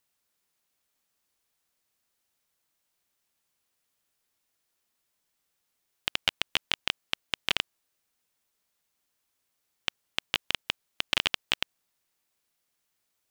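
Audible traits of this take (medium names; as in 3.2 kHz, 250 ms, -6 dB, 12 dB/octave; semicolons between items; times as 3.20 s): noise floor -79 dBFS; spectral tilt -0.5 dB/octave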